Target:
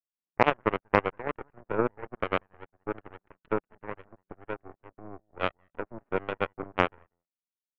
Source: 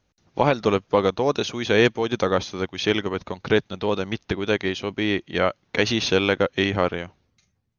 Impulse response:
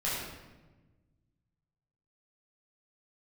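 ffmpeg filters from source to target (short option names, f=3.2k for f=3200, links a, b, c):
-filter_complex "[0:a]asplit=2[a][b];[b]adelay=190,highpass=300,lowpass=3.4k,asoftclip=type=hard:threshold=-13.5dB,volume=-13dB[c];[a][c]amix=inputs=2:normalize=0,afftfilt=real='re*between(b*sr/4096,170,1500)':imag='im*between(b*sr/4096,170,1500)':win_size=4096:overlap=0.75,aeval=exprs='0.562*(cos(1*acos(clip(val(0)/0.562,-1,1)))-cos(1*PI/2))+0.178*(cos(3*acos(clip(val(0)/0.562,-1,1)))-cos(3*PI/2))+0.0316*(cos(6*acos(clip(val(0)/0.562,-1,1)))-cos(6*PI/2))+0.00355*(cos(7*acos(clip(val(0)/0.562,-1,1)))-cos(7*PI/2))+0.0112*(cos(8*acos(clip(val(0)/0.562,-1,1)))-cos(8*PI/2))':c=same,volume=2dB"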